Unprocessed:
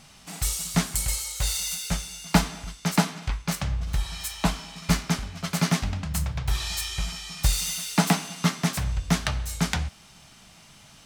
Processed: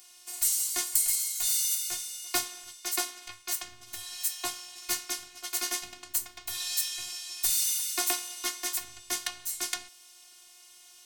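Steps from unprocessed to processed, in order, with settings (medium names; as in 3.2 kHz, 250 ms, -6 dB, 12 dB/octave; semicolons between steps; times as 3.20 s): robot voice 358 Hz; RIAA curve recording; trim -7.5 dB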